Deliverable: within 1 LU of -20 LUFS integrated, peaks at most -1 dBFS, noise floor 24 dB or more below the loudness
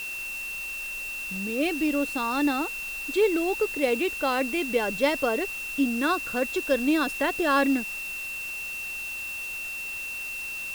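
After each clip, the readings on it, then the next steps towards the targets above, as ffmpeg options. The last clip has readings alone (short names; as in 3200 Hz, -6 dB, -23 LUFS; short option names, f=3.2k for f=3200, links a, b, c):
steady tone 2700 Hz; tone level -32 dBFS; noise floor -35 dBFS; noise floor target -51 dBFS; loudness -27.0 LUFS; peak -10.5 dBFS; loudness target -20.0 LUFS
-> -af "bandreject=f=2.7k:w=30"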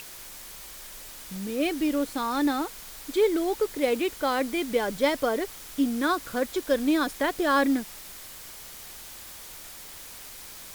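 steady tone none; noise floor -44 dBFS; noise floor target -51 dBFS
-> -af "afftdn=nr=7:nf=-44"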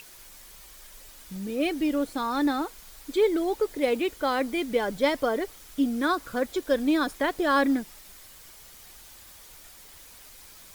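noise floor -49 dBFS; noise floor target -51 dBFS
-> -af "afftdn=nr=6:nf=-49"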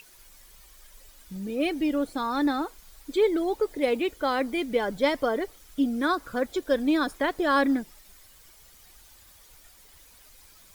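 noise floor -54 dBFS; loudness -27.0 LUFS; peak -11.5 dBFS; loudness target -20.0 LUFS
-> -af "volume=7dB"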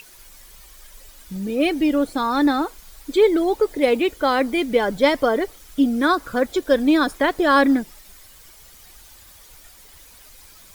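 loudness -20.0 LUFS; peak -4.5 dBFS; noise floor -47 dBFS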